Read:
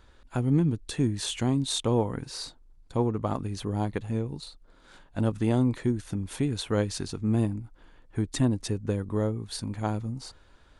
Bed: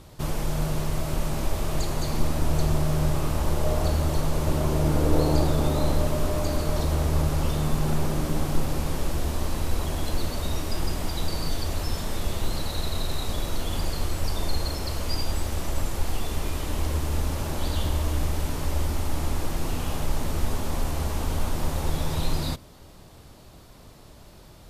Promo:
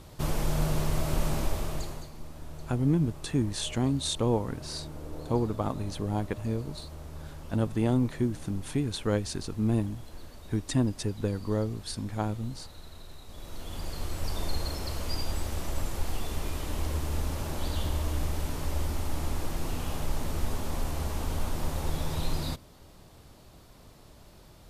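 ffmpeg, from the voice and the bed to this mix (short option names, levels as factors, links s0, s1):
-filter_complex "[0:a]adelay=2350,volume=0.841[s0];[1:a]volume=4.73,afade=t=out:st=1.31:d=0.79:silence=0.125893,afade=t=in:st=13.27:d=1.11:silence=0.188365[s1];[s0][s1]amix=inputs=2:normalize=0"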